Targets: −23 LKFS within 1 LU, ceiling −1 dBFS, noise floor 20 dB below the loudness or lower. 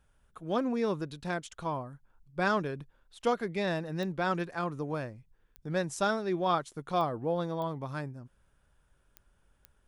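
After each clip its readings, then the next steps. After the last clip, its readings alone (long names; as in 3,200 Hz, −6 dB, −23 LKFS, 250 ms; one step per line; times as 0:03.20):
number of clicks 6; integrated loudness −33.0 LKFS; sample peak −15.0 dBFS; target loudness −23.0 LKFS
→ click removal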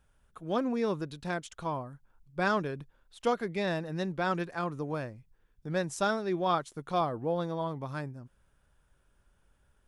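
number of clicks 0; integrated loudness −33.0 LKFS; sample peak −15.0 dBFS; target loudness −23.0 LKFS
→ level +10 dB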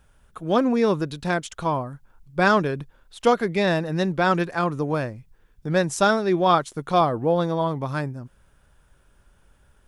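integrated loudness −23.0 LKFS; sample peak −5.0 dBFS; background noise floor −60 dBFS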